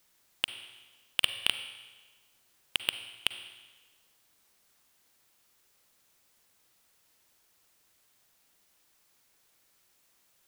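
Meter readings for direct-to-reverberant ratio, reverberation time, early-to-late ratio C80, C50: 9.5 dB, 1.3 s, 11.5 dB, 10.0 dB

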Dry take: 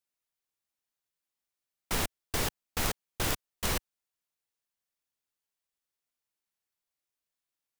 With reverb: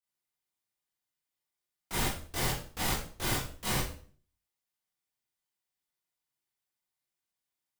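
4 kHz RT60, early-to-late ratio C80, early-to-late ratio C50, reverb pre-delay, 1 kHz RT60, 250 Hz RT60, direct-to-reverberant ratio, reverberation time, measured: 0.40 s, 9.5 dB, 4.0 dB, 17 ms, 0.45 s, 0.60 s, -10.0 dB, 0.45 s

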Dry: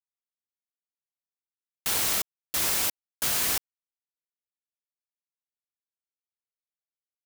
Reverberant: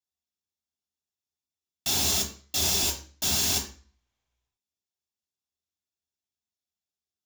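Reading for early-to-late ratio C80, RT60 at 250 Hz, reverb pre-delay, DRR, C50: 13.5 dB, 0.50 s, 3 ms, 1.0 dB, 9.0 dB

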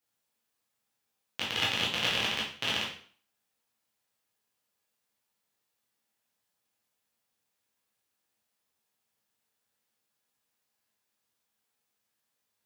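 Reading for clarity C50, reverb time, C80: 4.5 dB, 0.50 s, 9.0 dB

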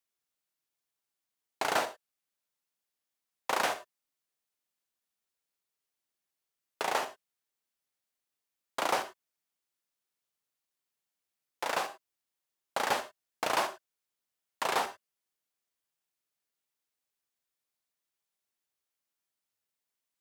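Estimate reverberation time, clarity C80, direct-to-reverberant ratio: not exponential, 16.5 dB, 11.0 dB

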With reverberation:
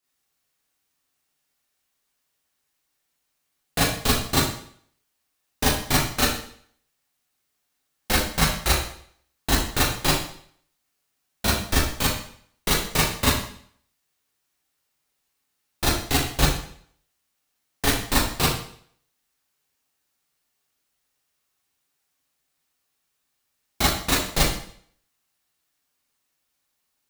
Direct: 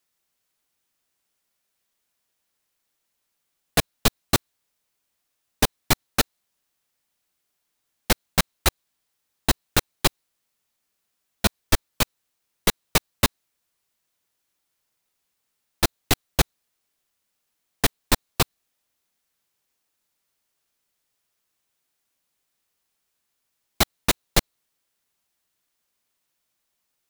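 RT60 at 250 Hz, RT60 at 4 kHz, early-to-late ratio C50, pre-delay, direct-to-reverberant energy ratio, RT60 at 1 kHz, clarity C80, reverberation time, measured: 0.60 s, 0.55 s, 1.5 dB, 26 ms, -8.0 dB, 0.60 s, 7.0 dB, 0.60 s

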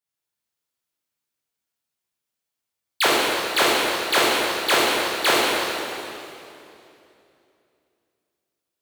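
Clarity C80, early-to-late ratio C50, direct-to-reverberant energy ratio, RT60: -1.5 dB, -3.5 dB, -8.0 dB, 2.8 s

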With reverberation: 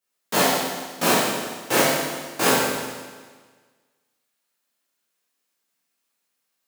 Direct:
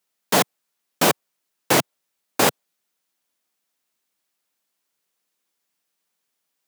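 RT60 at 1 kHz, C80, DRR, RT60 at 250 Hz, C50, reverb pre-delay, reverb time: 1.5 s, 1.0 dB, -10.5 dB, 1.5 s, -2.0 dB, 12 ms, 1.5 s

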